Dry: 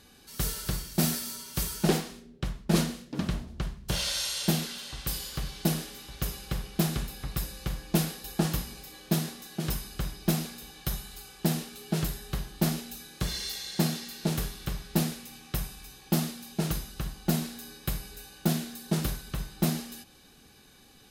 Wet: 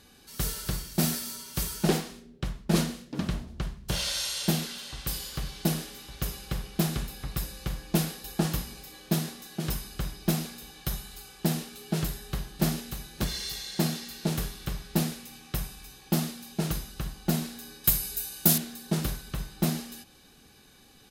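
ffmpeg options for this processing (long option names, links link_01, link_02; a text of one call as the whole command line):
ffmpeg -i in.wav -filter_complex "[0:a]asplit=2[link_01][link_02];[link_02]afade=type=in:start_time=12:duration=0.01,afade=type=out:start_time=12.65:duration=0.01,aecho=0:1:590|1180|1770|2360:0.501187|0.150356|0.0451069|0.0135321[link_03];[link_01][link_03]amix=inputs=2:normalize=0,asettb=1/sr,asplit=3[link_04][link_05][link_06];[link_04]atrim=end=17.844[link_07];[link_05]atrim=start=17.84:end=18.58,asetpts=PTS-STARTPTS,afade=type=in:duration=0.004:curve=qsin,afade=type=out:start_time=0.736:duration=0.004:curve=qsin,aemphasis=mode=production:type=75kf[link_08];[link_06]atrim=start=18.576[link_09];[link_07][link_08]acrossfade=duration=0.004:curve1=hsin:curve2=qsin[link_10];[link_10][link_09]acrossfade=duration=0.004:curve1=qsin:curve2=hsin" out.wav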